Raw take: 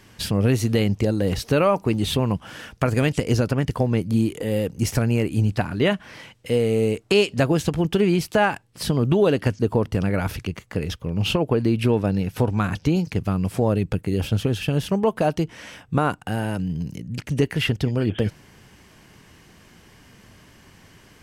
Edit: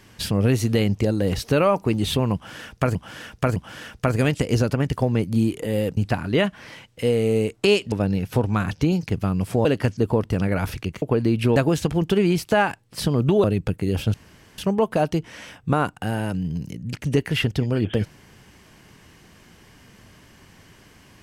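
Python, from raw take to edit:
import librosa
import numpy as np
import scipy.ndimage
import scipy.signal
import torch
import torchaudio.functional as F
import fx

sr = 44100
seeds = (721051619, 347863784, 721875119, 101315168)

y = fx.edit(x, sr, fx.repeat(start_s=2.34, length_s=0.61, count=3),
    fx.cut(start_s=4.75, length_s=0.69),
    fx.swap(start_s=7.39, length_s=1.88, other_s=11.96, other_length_s=1.73),
    fx.cut(start_s=10.64, length_s=0.78),
    fx.room_tone_fill(start_s=14.39, length_s=0.44), tone=tone)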